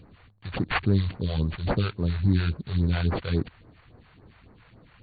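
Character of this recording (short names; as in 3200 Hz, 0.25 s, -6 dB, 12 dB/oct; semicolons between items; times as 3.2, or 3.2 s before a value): aliases and images of a low sample rate 4000 Hz, jitter 20%; phasing stages 2, 3.6 Hz, lowest notch 230–3200 Hz; AC-3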